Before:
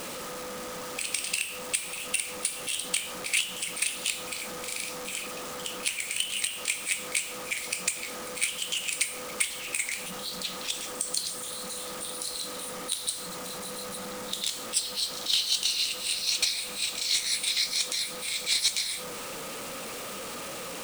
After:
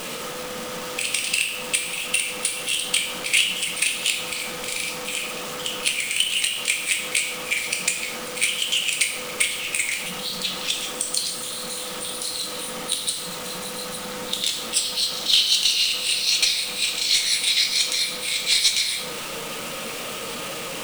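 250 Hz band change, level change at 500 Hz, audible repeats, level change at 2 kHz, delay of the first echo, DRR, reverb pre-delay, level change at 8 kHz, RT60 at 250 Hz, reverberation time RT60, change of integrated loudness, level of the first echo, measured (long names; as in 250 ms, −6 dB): +6.0 dB, +5.5 dB, no echo audible, +8.5 dB, no echo audible, 3.5 dB, 5 ms, +5.0 dB, 1.5 s, 1.0 s, +7.0 dB, no echo audible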